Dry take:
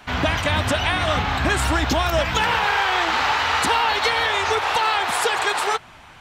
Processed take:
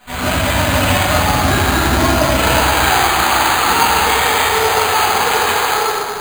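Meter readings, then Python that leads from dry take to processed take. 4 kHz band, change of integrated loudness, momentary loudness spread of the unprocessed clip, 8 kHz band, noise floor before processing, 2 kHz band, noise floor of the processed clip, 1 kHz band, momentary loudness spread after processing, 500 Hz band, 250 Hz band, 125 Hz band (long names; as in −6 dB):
+5.5 dB, +6.5 dB, 2 LU, +12.0 dB, −45 dBFS, +5.0 dB, −22 dBFS, +6.5 dB, 3 LU, +7.0 dB, +9.0 dB, +7.5 dB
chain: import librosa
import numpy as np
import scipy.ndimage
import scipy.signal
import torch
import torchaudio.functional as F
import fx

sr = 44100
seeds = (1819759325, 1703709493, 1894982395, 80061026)

y = fx.room_shoebox(x, sr, seeds[0], volume_m3=150.0, walls='hard', distance_m=1.9)
y = np.repeat(y[::8], 8)[:len(y)]
y = y * librosa.db_to_amplitude(-6.5)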